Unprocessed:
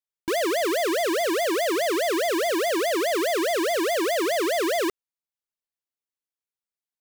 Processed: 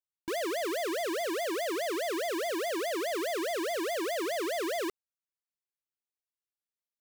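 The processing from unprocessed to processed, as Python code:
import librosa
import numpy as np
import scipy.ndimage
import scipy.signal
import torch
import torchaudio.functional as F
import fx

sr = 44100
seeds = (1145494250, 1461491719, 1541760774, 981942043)

y = fx.highpass(x, sr, hz=96.0, slope=12, at=(1.24, 3.07))
y = F.gain(torch.from_numpy(y), -8.5).numpy()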